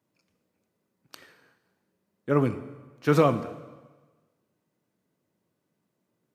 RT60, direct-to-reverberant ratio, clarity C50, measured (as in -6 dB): 1.3 s, 11.5 dB, 13.5 dB